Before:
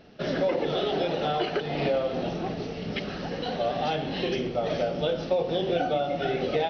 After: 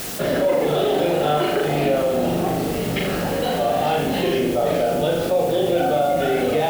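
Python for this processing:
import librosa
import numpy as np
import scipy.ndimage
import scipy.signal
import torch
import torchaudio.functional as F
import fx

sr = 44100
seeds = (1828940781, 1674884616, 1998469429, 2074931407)

p1 = fx.high_shelf(x, sr, hz=4500.0, db=-12.0)
p2 = fx.room_flutter(p1, sr, wall_m=6.9, rt60_s=0.57)
p3 = fx.quant_dither(p2, sr, seeds[0], bits=6, dither='triangular')
p4 = p2 + (p3 * librosa.db_to_amplitude(-7.5))
p5 = fx.peak_eq(p4, sr, hz=170.0, db=-2.5, octaves=0.77)
y = fx.env_flatten(p5, sr, amount_pct=50)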